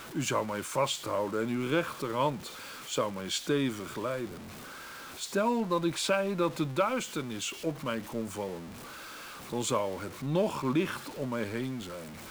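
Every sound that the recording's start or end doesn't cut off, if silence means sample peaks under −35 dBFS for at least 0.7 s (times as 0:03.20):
0:05.21–0:08.58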